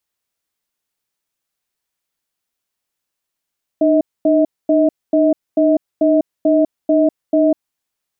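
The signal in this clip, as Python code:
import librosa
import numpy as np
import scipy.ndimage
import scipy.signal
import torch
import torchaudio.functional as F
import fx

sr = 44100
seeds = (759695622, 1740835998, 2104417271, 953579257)

y = fx.cadence(sr, length_s=3.73, low_hz=304.0, high_hz=636.0, on_s=0.2, off_s=0.24, level_db=-12.5)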